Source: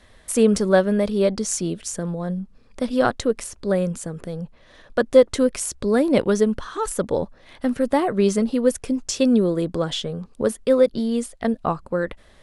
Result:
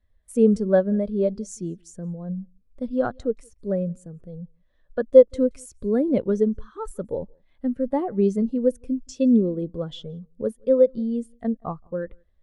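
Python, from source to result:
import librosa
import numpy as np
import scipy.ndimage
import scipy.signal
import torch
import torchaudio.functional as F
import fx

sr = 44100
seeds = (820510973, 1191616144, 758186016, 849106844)

y = fx.low_shelf(x, sr, hz=110.0, db=7.0)
y = y + 10.0 ** (-22.0 / 20.0) * np.pad(y, (int(173 * sr / 1000.0), 0))[:len(y)]
y = fx.spectral_expand(y, sr, expansion=1.5)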